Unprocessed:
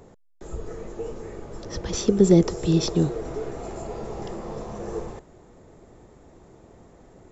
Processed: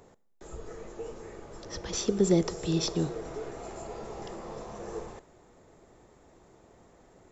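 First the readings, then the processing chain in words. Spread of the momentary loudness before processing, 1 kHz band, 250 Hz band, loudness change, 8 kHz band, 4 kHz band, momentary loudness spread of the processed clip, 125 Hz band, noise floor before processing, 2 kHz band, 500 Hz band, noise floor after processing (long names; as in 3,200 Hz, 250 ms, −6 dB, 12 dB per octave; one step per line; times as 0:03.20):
21 LU, −4.5 dB, −8.0 dB, −7.5 dB, can't be measured, −2.5 dB, 20 LU, −9.0 dB, −52 dBFS, −3.0 dB, −7.0 dB, −59 dBFS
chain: low-shelf EQ 480 Hz −7.5 dB
four-comb reverb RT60 0.86 s, combs from 33 ms, DRR 19.5 dB
level −2.5 dB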